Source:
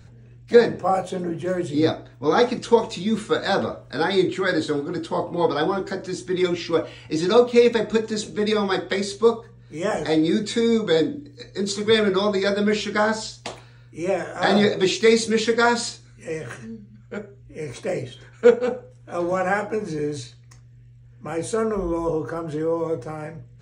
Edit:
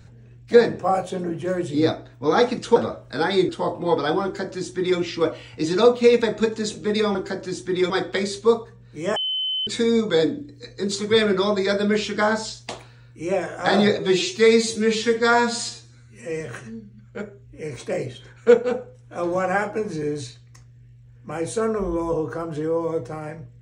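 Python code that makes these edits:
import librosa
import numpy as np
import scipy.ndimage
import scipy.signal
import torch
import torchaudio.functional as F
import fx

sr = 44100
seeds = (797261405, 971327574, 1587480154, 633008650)

y = fx.edit(x, sr, fx.cut(start_s=2.76, length_s=0.8),
    fx.cut(start_s=4.29, length_s=0.72),
    fx.duplicate(start_s=5.76, length_s=0.75, to_s=8.67),
    fx.bleep(start_s=9.93, length_s=0.51, hz=3050.0, db=-22.0),
    fx.stretch_span(start_s=14.76, length_s=1.61, factor=1.5), tone=tone)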